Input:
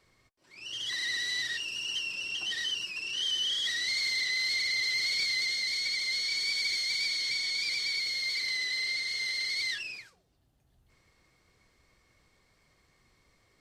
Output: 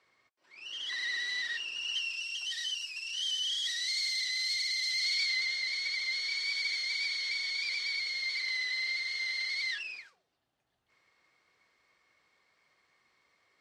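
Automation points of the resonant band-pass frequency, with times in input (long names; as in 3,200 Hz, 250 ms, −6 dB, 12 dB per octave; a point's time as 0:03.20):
resonant band-pass, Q 0.53
0:01.74 1,500 Hz
0:02.33 6,500 Hz
0:04.88 6,500 Hz
0:05.46 1,700 Hz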